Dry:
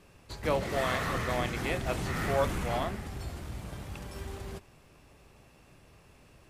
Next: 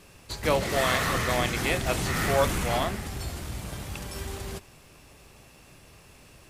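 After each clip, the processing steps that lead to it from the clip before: high shelf 2900 Hz +8 dB; gain +4 dB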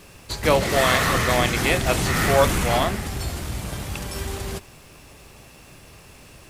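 requantised 12-bit, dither triangular; gain +6 dB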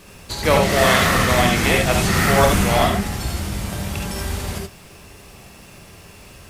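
non-linear reverb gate 0.1 s rising, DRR 0.5 dB; gain +1 dB

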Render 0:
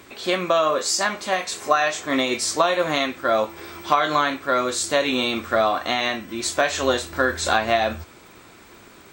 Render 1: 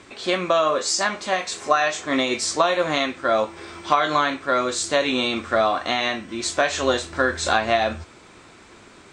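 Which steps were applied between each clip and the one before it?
LPF 8800 Hz 24 dB/oct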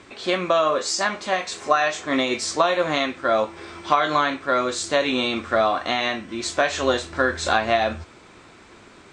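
high shelf 8200 Hz -7.5 dB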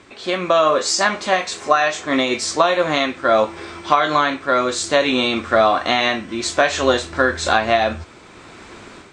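AGC gain up to 9 dB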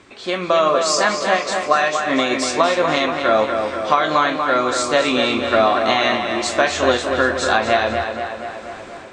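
tape echo 0.24 s, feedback 69%, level -5 dB, low-pass 3800 Hz; gain -1 dB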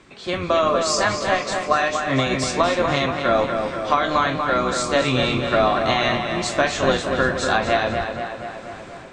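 octaver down 1 oct, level 0 dB; gain -3 dB

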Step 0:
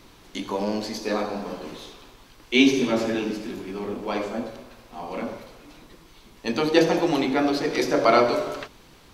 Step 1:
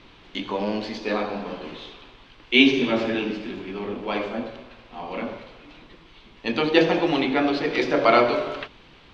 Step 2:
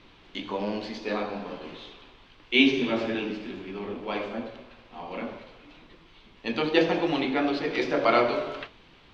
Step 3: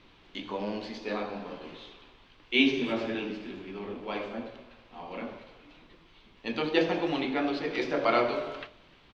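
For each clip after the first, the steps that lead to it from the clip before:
synth low-pass 3100 Hz, resonance Q 1.8
flange 1.6 Hz, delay 9.3 ms, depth 4.4 ms, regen -72%
speakerphone echo 0.3 s, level -25 dB; gain -3.5 dB

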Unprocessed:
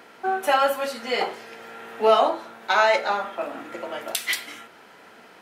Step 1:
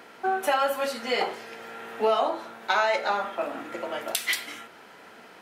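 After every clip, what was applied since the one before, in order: compressor 3:1, threshold -21 dBFS, peak gain reduction 7 dB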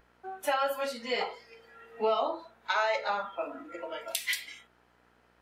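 buzz 60 Hz, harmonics 31, -49 dBFS -2 dB/oct; spectral noise reduction 15 dB; gain -4.5 dB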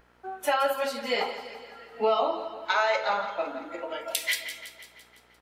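feedback echo 0.169 s, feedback 58%, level -12 dB; gain +3.5 dB

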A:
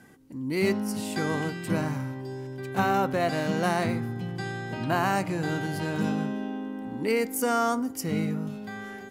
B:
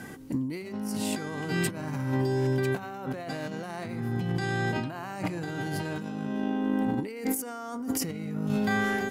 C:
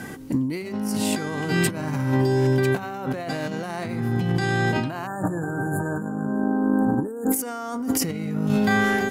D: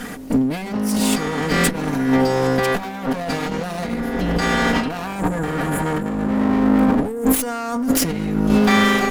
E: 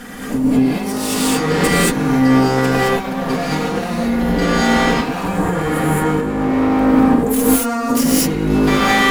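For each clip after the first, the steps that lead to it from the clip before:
negative-ratio compressor -37 dBFS, ratio -1; gain +5 dB
spectral delete 5.07–7.32, 1800–6700 Hz; gain +6.5 dB
minimum comb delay 4.2 ms; gain +6.5 dB
non-linear reverb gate 0.25 s rising, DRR -7 dB; gain -3.5 dB

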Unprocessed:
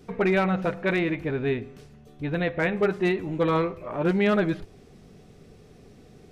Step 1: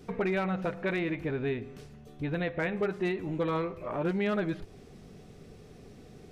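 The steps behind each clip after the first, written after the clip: compressor 2:1, threshold -32 dBFS, peak gain reduction 8 dB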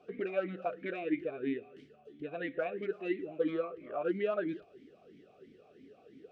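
vowel sweep a-i 3 Hz; gain +6 dB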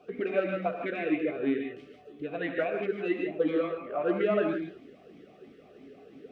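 non-linear reverb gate 0.18 s rising, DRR 2 dB; gain +4.5 dB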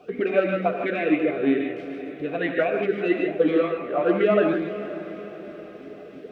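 diffused feedback echo 0.495 s, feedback 53%, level -13 dB; gain +7 dB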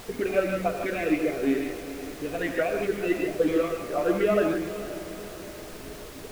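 added noise pink -40 dBFS; gain -3.5 dB

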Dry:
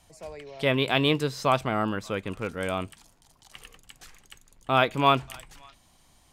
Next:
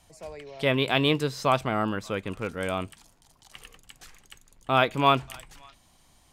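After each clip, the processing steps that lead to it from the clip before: nothing audible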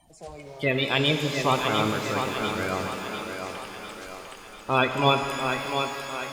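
bin magnitudes rounded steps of 30 dB; thinning echo 0.699 s, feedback 52%, high-pass 190 Hz, level -6 dB; shimmer reverb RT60 3.9 s, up +12 st, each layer -8 dB, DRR 5.5 dB

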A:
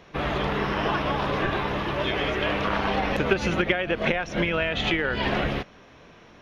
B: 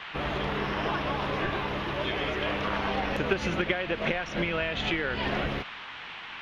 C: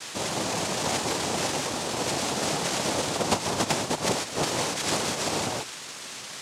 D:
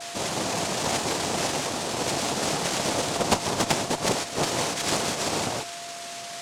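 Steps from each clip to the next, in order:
band noise 770–3200 Hz -37 dBFS; gain -4.5 dB
noise vocoder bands 2; gain +2 dB
whine 690 Hz -39 dBFS; added harmonics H 3 -16 dB, 8 -35 dB, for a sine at -7.5 dBFS; gain +6 dB

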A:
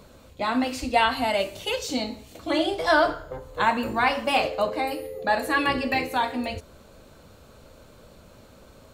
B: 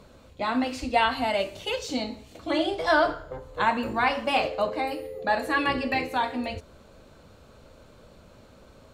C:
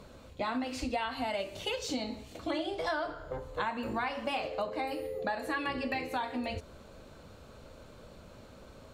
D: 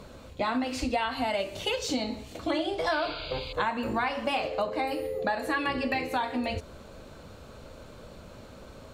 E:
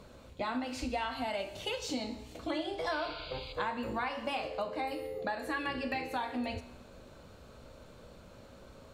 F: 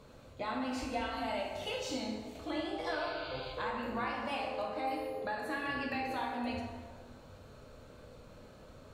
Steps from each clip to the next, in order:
high shelf 10000 Hz -12 dB; gain -1.5 dB
compressor 6:1, threshold -31 dBFS, peak gain reduction 13.5 dB
painted sound noise, 2.91–3.53, 2100–4900 Hz -46 dBFS; gain +5 dB
resonator 61 Hz, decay 1 s, harmonics all, mix 60%
plate-style reverb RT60 1.6 s, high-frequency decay 0.55×, DRR -1 dB; gain -4.5 dB

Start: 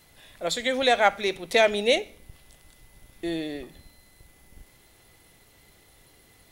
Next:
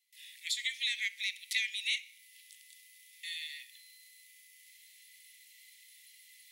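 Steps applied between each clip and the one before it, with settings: gate with hold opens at -47 dBFS; steep high-pass 1900 Hz 96 dB/oct; compressor 2:1, threshold -37 dBFS, peak gain reduction 9 dB; gain +1.5 dB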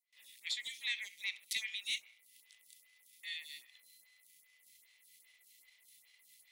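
sample leveller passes 1; photocell phaser 2.5 Hz; gain -3.5 dB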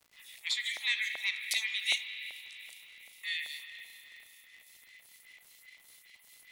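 spring tank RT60 3.7 s, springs 36/54 ms, chirp 40 ms, DRR 5.5 dB; LFO high-pass saw up 2.6 Hz 660–2100 Hz; crackle 120/s -54 dBFS; gain +5 dB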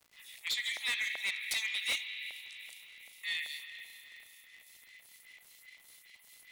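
hard clip -28.5 dBFS, distortion -11 dB

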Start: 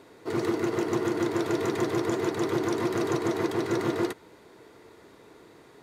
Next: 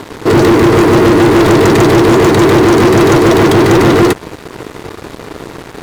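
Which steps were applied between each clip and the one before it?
low shelf 220 Hz +11 dB; sample leveller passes 5; gain +7.5 dB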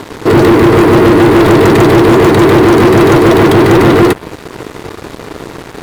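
dynamic EQ 6300 Hz, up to -6 dB, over -35 dBFS, Q 1.2; gain +1.5 dB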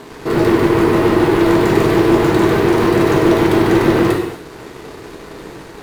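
non-linear reverb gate 0.32 s falling, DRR -2 dB; gain -11.5 dB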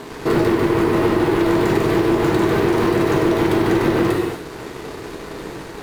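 compressor, threshold -15 dBFS, peak gain reduction 8 dB; gain +1.5 dB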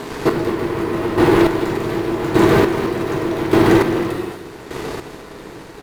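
chopper 0.85 Hz, depth 65%, duty 25%; echo 0.214 s -11.5 dB; gain +5 dB

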